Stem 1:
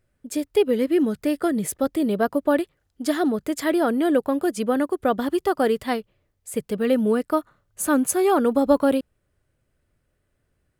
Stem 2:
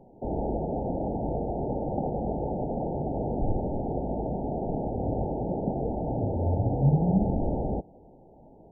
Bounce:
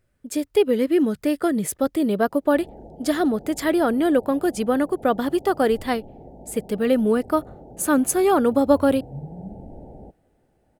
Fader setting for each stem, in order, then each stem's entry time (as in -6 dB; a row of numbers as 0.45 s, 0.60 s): +1.0 dB, -13.0 dB; 0.00 s, 2.30 s